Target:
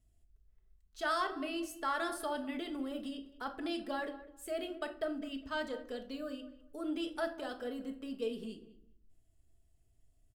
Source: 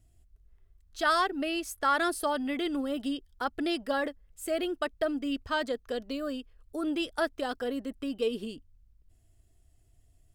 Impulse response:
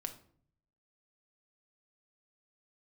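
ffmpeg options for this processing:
-filter_complex "[0:a]asplit=2[link_01][link_02];[link_02]adelay=202,lowpass=frequency=1900:poles=1,volume=-15.5dB,asplit=2[link_03][link_04];[link_04]adelay=202,lowpass=frequency=1900:poles=1,volume=0.23[link_05];[link_01][link_03][link_05]amix=inputs=3:normalize=0[link_06];[1:a]atrim=start_sample=2205,asetrate=48510,aresample=44100[link_07];[link_06][link_07]afir=irnorm=-1:irlink=0,volume=-5.5dB"

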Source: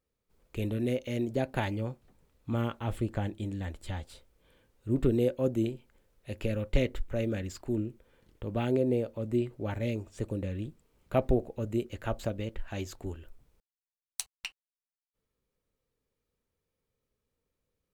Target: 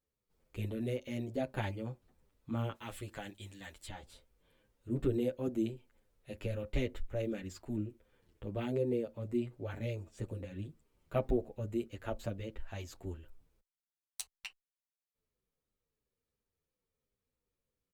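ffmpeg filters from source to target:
ffmpeg -i in.wav -filter_complex "[0:a]asettb=1/sr,asplit=3[link_01][link_02][link_03];[link_01]atrim=end=2.754[link_04];[link_02]atrim=start=2.75:end=3.88,asetpts=PTS-STARTPTS,afade=type=in:duration=0.004:curve=qsin,afade=type=out:start_time=1.126:duration=0.004:curve=qsin,tiltshelf=frequency=1100:gain=-8[link_05];[link_03]atrim=start=3.876[link_06];[link_04][link_05]acrossfade=duration=0.004:curve1=hsin:curve2=qsin[link_07];[link_07][link_06]acrossfade=duration=0.004:curve1=qsin:curve2=hsin,asplit=2[link_08][link_09];[link_09]adelay=8.6,afreqshift=-2.9[link_10];[link_08][link_10]amix=inputs=2:normalize=1,volume=-3dB" out.wav

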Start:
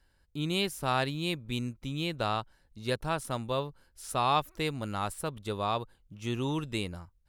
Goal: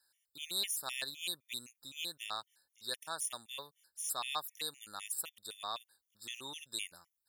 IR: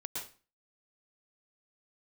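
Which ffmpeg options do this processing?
-af "aderivative,afftfilt=real='re*gt(sin(2*PI*3.9*pts/sr)*(1-2*mod(floor(b*sr/1024/1800),2)),0)':imag='im*gt(sin(2*PI*3.9*pts/sr)*(1-2*mod(floor(b*sr/1024/1800),2)),0)':win_size=1024:overlap=0.75,volume=7dB"

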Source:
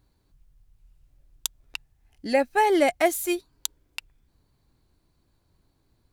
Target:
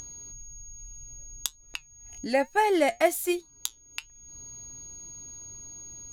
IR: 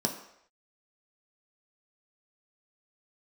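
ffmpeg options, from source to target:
-af "flanger=delay=5.2:depth=3.7:regen=73:speed=1.2:shape=triangular,aeval=exprs='val(0)+0.00126*sin(2*PI*6600*n/s)':channel_layout=same,acompressor=mode=upward:threshold=-34dB:ratio=2.5,volume=2.5dB"

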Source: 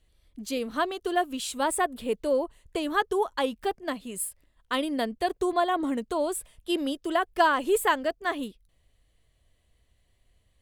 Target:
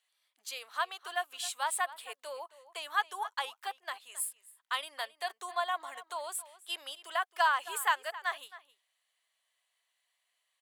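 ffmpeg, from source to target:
ffmpeg -i in.wav -filter_complex "[0:a]highpass=frequency=840:width=0.5412,highpass=frequency=840:width=1.3066,asplit=2[link_01][link_02];[link_02]adelay=268.2,volume=-16dB,highshelf=frequency=4000:gain=-6.04[link_03];[link_01][link_03]amix=inputs=2:normalize=0,volume=-3dB" out.wav

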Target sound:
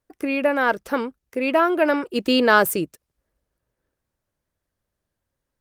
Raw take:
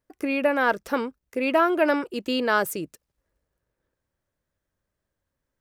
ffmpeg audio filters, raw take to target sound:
ffmpeg -i in.wav -filter_complex "[0:a]asplit=3[link_01][link_02][link_03];[link_01]afade=type=out:start_time=2.14:duration=0.02[link_04];[link_02]acontrast=34,afade=type=in:start_time=2.14:duration=0.02,afade=type=out:start_time=2.83:duration=0.02[link_05];[link_03]afade=type=in:start_time=2.83:duration=0.02[link_06];[link_04][link_05][link_06]amix=inputs=3:normalize=0,volume=2dB" -ar 48000 -c:a libopus -b:a 32k out.opus

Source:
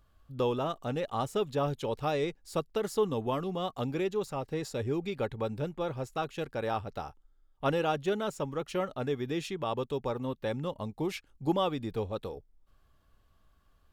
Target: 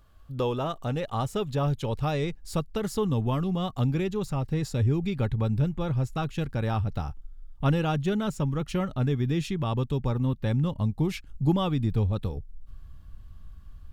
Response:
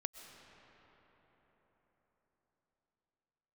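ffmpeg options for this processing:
-filter_complex "[0:a]asubboost=boost=6.5:cutoff=180,asplit=2[link_01][link_02];[link_02]acompressor=threshold=-39dB:ratio=6,volume=0.5dB[link_03];[link_01][link_03]amix=inputs=2:normalize=0"

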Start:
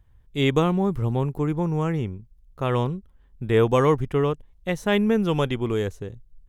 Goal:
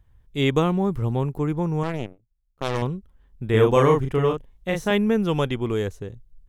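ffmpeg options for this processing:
ffmpeg -i in.wav -filter_complex "[0:a]asettb=1/sr,asplit=3[link_01][link_02][link_03];[link_01]atrim=end=1.834[link_04];[link_02]atrim=start=1.83:end=2.82,asetpts=PTS-STARTPTS,afade=type=in:duration=0.004:curve=qsin,afade=type=out:start_time=0.986:duration=0.004:curve=qsin,aeval=exprs='0.299*(cos(1*acos(clip(val(0)/0.299,-1,1)))-cos(1*PI/2))+0.0596*(cos(2*acos(clip(val(0)/0.299,-1,1)))-cos(2*PI/2))+0.0473*(cos(7*acos(clip(val(0)/0.299,-1,1)))-cos(7*PI/2))+0.0119*(cos(8*acos(clip(val(0)/0.299,-1,1)))-cos(8*PI/2))':channel_layout=same[link_05];[link_03]atrim=start=2.816[link_06];[link_04][link_05]acrossfade=duration=0.004:curve1=hsin:curve2=qsin[link_07];[link_07][link_06]acrossfade=duration=0.004:curve1=qsin:curve2=hsin,asettb=1/sr,asplit=3[link_08][link_09][link_10];[link_08]atrim=end=3.504[link_11];[link_09]atrim=start=3.5:end=4.91,asetpts=PTS-STARTPTS,afade=type=in:duration=0.004:curve=qsin,afade=type=out:start_time=1.406:duration=0.004:curve=qsin,asplit=2[link_12][link_13];[link_13]adelay=37,volume=-3dB[link_14];[link_12][link_14]amix=inputs=2:normalize=0,atrim=end_sample=62181[link_15];[link_10]atrim=start=4.906[link_16];[link_11][link_15]acrossfade=duration=0.004:curve1=hsin:curve2=qsin[link_17];[link_17][link_16]acrossfade=duration=0.004:curve1=qsin:curve2=hsin" out.wav

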